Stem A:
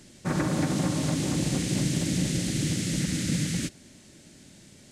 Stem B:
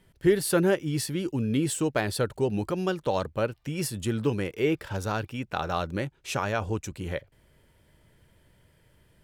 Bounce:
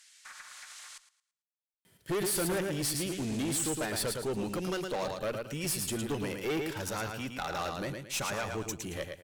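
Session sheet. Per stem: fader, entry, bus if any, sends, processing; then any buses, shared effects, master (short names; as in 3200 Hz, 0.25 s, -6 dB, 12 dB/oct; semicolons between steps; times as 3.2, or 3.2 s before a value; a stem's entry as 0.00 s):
-1.0 dB, 0.00 s, muted 0.98–3.1, no send, echo send -15 dB, HPF 1300 Hz 24 dB/oct; compressor 2.5:1, threshold -47 dBFS, peak gain reduction 10 dB
-2.0 dB, 1.85 s, no send, echo send -7 dB, high shelf 3200 Hz +11 dB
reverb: off
echo: feedback echo 0.111 s, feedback 27%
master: HPF 110 Hz 12 dB/oct; tube stage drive 28 dB, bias 0.4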